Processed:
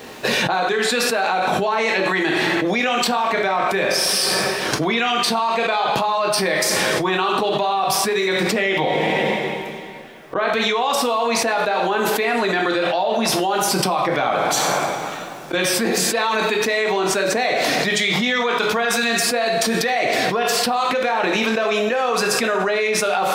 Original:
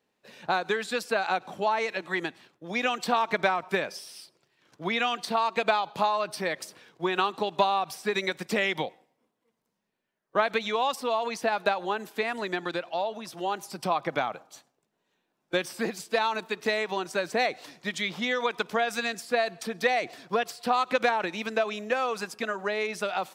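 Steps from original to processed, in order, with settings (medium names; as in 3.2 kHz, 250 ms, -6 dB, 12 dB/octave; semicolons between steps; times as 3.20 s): 8.35–10.48 s: treble shelf 4.2 kHz -8 dB; two-slope reverb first 0.47 s, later 2.1 s, from -20 dB, DRR 2 dB; level flattener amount 100%; trim -2 dB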